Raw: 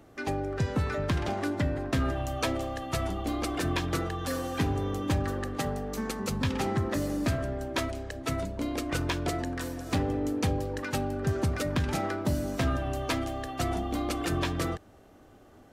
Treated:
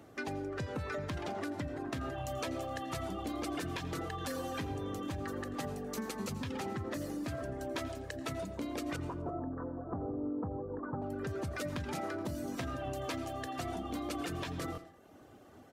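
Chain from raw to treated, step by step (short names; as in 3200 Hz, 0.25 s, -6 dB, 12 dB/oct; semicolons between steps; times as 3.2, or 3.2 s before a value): HPF 79 Hz; reverb removal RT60 0.59 s; 8.96–11.02 steep low-pass 1300 Hz 48 dB/oct; limiter -24.5 dBFS, peak gain reduction 7.5 dB; compressor, threshold -35 dBFS, peak gain reduction 6.5 dB; feedback echo 85 ms, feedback 52%, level -18.5 dB; reverb RT60 0.55 s, pre-delay 65 ms, DRR 13 dB; stuck buffer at 14.73, samples 1024, times 1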